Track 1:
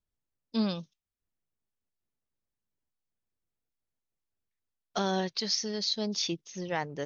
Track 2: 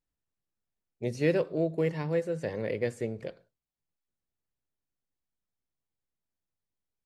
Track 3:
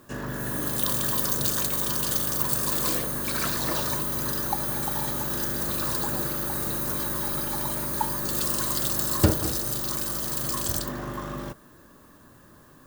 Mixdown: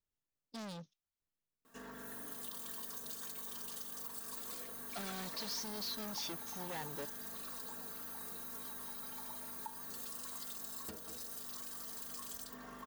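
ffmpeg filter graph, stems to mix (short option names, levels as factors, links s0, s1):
-filter_complex "[0:a]lowshelf=f=300:g=8.5,volume=56.2,asoftclip=hard,volume=0.0178,volume=0.596[s0];[2:a]aecho=1:1:4.4:0.92,adelay=1650,volume=0.2,acompressor=threshold=0.00708:ratio=4,volume=1[s1];[s0][s1]amix=inputs=2:normalize=0,lowshelf=f=210:g=-12"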